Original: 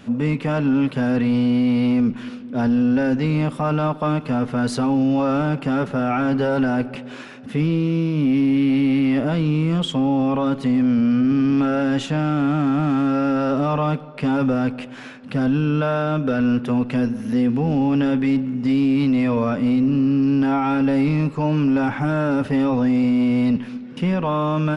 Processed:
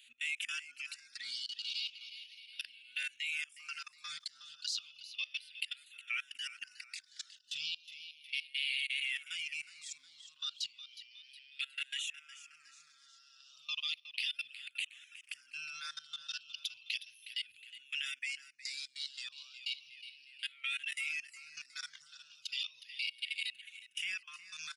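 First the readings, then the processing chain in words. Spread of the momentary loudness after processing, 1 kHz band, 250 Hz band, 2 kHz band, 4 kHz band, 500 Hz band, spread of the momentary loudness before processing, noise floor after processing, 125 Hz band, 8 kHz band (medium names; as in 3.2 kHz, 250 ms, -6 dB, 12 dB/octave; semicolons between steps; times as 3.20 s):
14 LU, -33.5 dB, under -40 dB, -8.5 dB, -1.0 dB, under -40 dB, 5 LU, -65 dBFS, under -40 dB, no reading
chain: reverb removal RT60 1.9 s; inverse Chebyshev high-pass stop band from 860 Hz, stop band 60 dB; level held to a coarse grid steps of 24 dB; feedback delay 364 ms, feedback 50%, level -13.5 dB; barber-pole phaser -0.34 Hz; trim +13 dB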